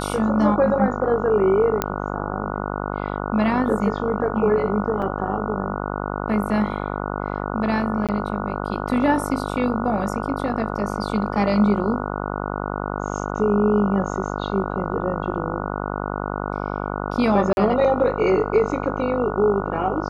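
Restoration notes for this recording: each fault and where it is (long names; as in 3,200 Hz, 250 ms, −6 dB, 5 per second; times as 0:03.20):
mains buzz 50 Hz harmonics 29 −27 dBFS
0:01.82: click −5 dBFS
0:05.02–0:05.03: drop-out 5.7 ms
0:08.07–0:08.09: drop-out 17 ms
0:17.53–0:17.57: drop-out 41 ms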